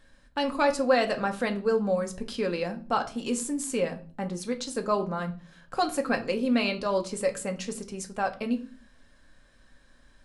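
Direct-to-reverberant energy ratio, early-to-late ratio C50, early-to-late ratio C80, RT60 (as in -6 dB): 4.5 dB, 15.0 dB, 20.0 dB, 0.40 s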